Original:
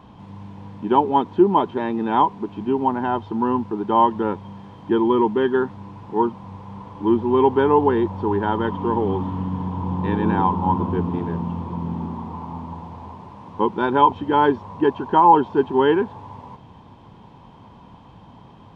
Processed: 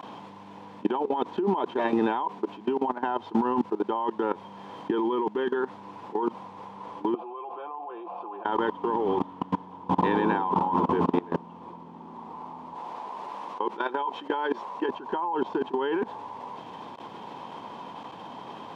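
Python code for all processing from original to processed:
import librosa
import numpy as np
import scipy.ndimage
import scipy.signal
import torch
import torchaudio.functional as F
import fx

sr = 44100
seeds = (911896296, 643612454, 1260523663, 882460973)

y = fx.chain(x, sr, fx.vowel_filter(vowel='a'),
    fx.comb(ms=5.8, depth=0.72), at=(7.14, 8.45))
y = fx.chain(y, sr, fx.highpass(hz=460.0, slope=6),
    fx.doubler(ms=14.0, db=-13), at=(12.75, 14.89))
y = fx.level_steps(y, sr, step_db=24)
y = scipy.signal.sosfilt(scipy.signal.butter(2, 350.0, 'highpass', fs=sr, output='sos'), y)
y = fx.over_compress(y, sr, threshold_db=-32.0, ratio=-1.0)
y = y * 10.0 ** (6.5 / 20.0)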